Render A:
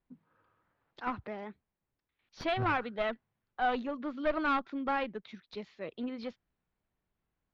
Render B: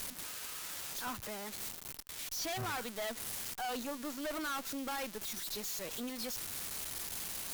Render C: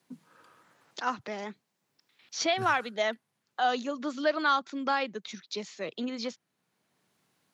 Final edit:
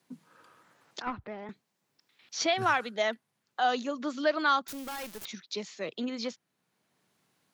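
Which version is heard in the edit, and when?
C
1.02–1.49 from A
4.68–5.25 from B

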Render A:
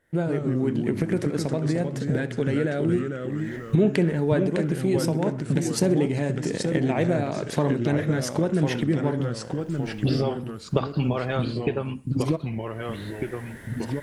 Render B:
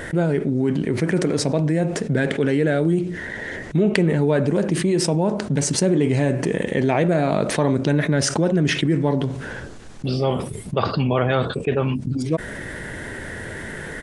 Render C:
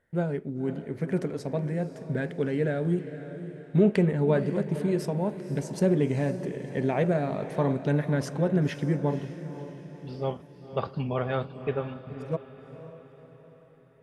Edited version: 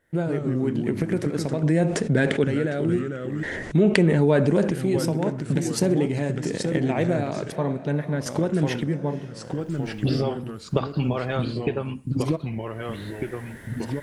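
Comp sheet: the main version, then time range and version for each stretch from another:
A
1.63–2.44 from B
3.43–4.71 from B
7.52–8.26 from C
8.87–9.37 from C, crossfade 0.24 s

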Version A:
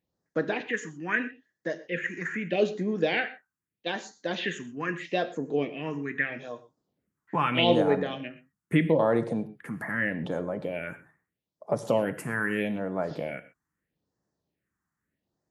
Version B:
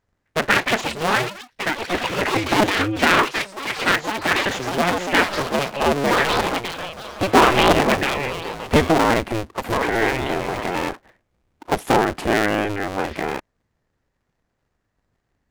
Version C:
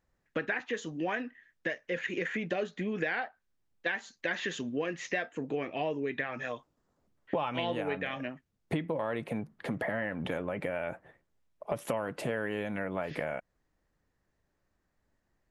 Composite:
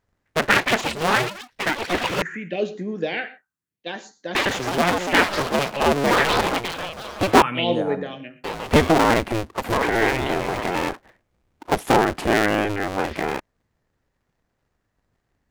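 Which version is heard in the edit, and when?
B
2.22–4.35 from A
7.42–8.44 from A
not used: C

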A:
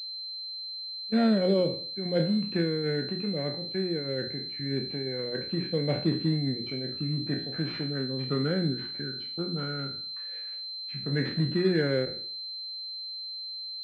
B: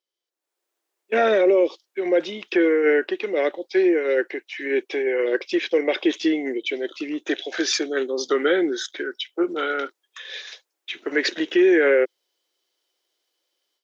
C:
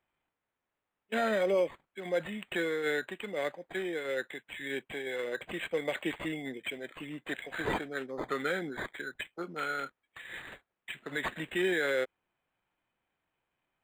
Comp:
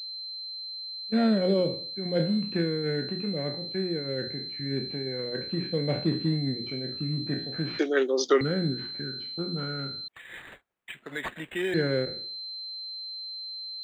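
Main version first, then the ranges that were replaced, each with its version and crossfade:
A
7.79–8.41 from B
10.08–11.74 from C

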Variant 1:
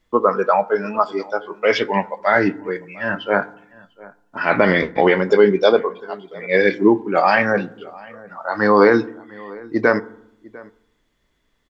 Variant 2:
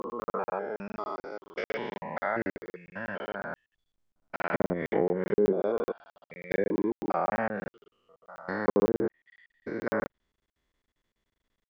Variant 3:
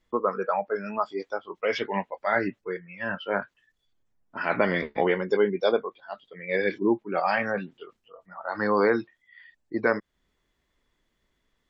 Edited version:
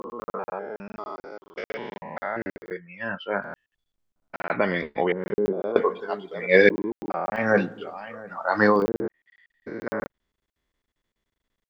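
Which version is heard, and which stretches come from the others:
2
2.71–3.44 from 3
4.5–5.12 from 3
5.76–6.69 from 1
7.45–8.73 from 1, crossfade 0.24 s

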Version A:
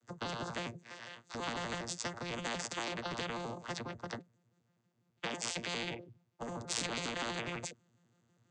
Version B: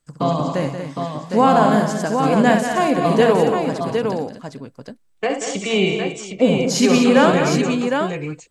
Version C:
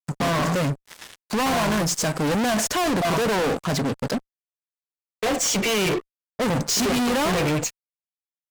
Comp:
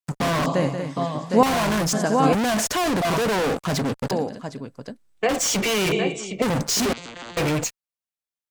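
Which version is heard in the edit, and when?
C
0.46–1.43 from B
1.93–2.33 from B
4.11–5.29 from B
5.92–6.42 from B
6.93–7.37 from A

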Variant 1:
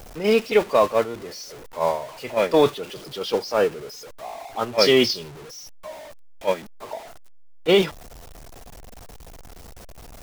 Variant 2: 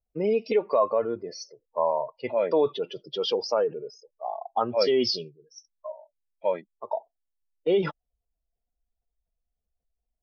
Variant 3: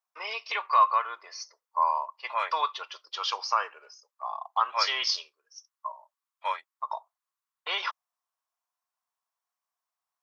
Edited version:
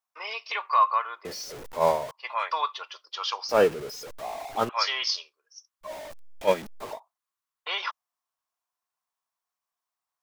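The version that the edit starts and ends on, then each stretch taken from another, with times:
3
1.25–2.11 from 1
3.49–4.69 from 1
5.86–6.95 from 1, crossfade 0.10 s
not used: 2

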